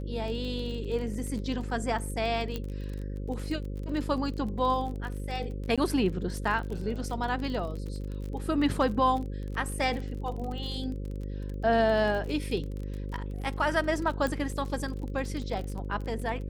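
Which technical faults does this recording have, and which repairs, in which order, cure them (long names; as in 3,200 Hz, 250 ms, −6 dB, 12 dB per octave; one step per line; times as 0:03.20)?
mains buzz 50 Hz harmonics 11 −35 dBFS
surface crackle 31 per second −35 dBFS
0:02.56: click −19 dBFS
0:05.76–0:05.78: drop-out 16 ms
0:14.27: click −18 dBFS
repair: click removal
hum removal 50 Hz, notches 11
repair the gap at 0:05.76, 16 ms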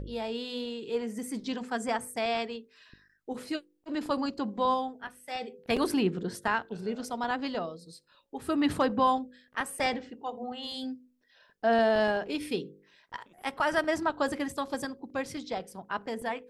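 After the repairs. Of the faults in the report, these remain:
0:14.27: click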